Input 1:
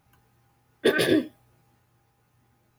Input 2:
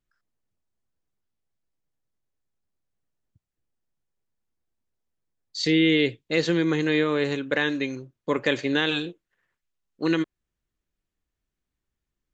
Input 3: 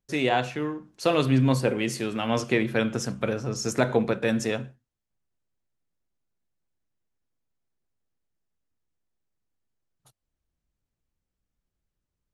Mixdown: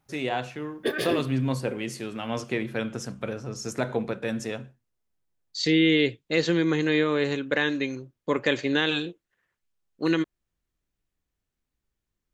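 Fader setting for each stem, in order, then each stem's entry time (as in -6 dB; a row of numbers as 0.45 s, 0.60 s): -6.0 dB, -0.5 dB, -5.0 dB; 0.00 s, 0.00 s, 0.00 s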